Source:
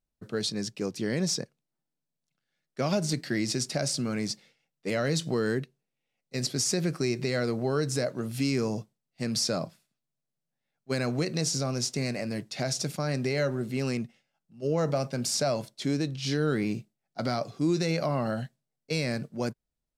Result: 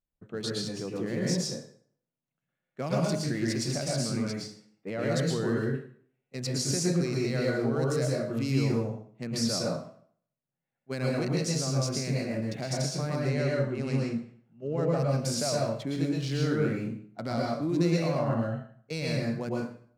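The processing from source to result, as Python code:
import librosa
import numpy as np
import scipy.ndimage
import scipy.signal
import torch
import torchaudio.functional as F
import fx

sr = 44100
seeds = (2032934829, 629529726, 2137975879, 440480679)

y = fx.wiener(x, sr, points=9)
y = fx.high_shelf(y, sr, hz=3500.0, db=-9.0, at=(4.3, 5.01), fade=0.02)
y = fx.lowpass(y, sr, hz=9500.0, slope=12, at=(13.2, 14.98))
y = fx.rev_plate(y, sr, seeds[0], rt60_s=0.56, hf_ratio=0.8, predelay_ms=100, drr_db=-3.0)
y = y * librosa.db_to_amplitude(-5.0)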